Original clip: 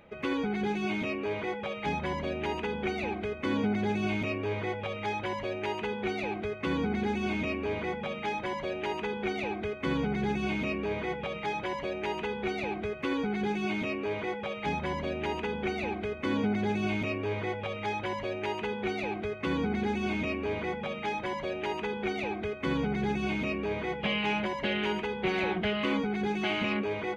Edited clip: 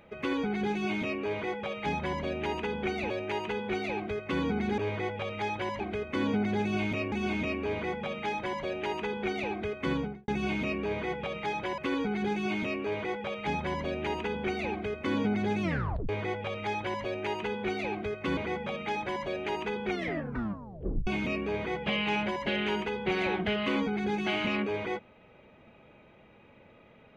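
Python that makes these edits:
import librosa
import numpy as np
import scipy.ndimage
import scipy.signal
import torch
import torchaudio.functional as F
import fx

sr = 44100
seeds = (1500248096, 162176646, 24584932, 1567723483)

y = fx.studio_fade_out(x, sr, start_s=9.89, length_s=0.39)
y = fx.edit(y, sr, fx.swap(start_s=3.1, length_s=1.32, other_s=5.44, other_length_s=1.68),
    fx.cut(start_s=11.78, length_s=1.19),
    fx.tape_stop(start_s=16.81, length_s=0.47),
    fx.cut(start_s=19.56, length_s=0.98),
    fx.tape_stop(start_s=22.07, length_s=1.17), tone=tone)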